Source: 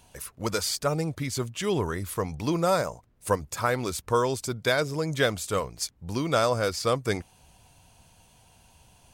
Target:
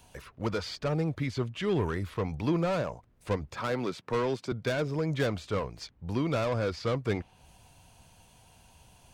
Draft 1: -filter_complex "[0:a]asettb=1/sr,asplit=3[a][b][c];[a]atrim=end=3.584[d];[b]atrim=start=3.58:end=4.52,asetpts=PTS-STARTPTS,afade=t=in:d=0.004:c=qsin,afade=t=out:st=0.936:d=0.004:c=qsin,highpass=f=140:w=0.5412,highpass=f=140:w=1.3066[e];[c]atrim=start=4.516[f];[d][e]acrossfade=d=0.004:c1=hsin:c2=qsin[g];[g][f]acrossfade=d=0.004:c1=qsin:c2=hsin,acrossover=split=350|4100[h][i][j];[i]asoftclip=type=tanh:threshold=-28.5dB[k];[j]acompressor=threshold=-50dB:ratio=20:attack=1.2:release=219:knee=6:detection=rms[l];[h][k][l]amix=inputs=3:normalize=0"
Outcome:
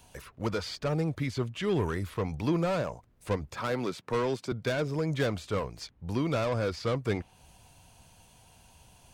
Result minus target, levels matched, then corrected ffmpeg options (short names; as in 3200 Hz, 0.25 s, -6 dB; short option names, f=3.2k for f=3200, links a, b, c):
compressor: peak gain reduction -6.5 dB
-filter_complex "[0:a]asettb=1/sr,asplit=3[a][b][c];[a]atrim=end=3.584[d];[b]atrim=start=3.58:end=4.52,asetpts=PTS-STARTPTS,afade=t=in:d=0.004:c=qsin,afade=t=out:st=0.936:d=0.004:c=qsin,highpass=f=140:w=0.5412,highpass=f=140:w=1.3066[e];[c]atrim=start=4.516[f];[d][e]acrossfade=d=0.004:c1=hsin:c2=qsin[g];[g][f]acrossfade=d=0.004:c1=qsin:c2=hsin,acrossover=split=350|4100[h][i][j];[i]asoftclip=type=tanh:threshold=-28.5dB[k];[j]acompressor=threshold=-57dB:ratio=20:attack=1.2:release=219:knee=6:detection=rms[l];[h][k][l]amix=inputs=3:normalize=0"